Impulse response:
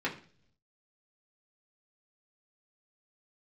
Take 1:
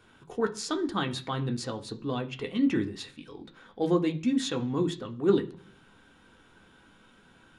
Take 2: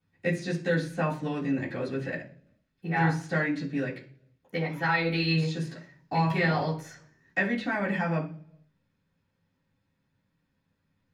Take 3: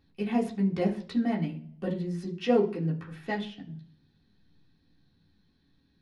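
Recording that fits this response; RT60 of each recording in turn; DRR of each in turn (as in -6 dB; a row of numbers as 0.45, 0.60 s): 3; 0.50, 0.50, 0.50 s; 3.5, -14.5, -5.5 dB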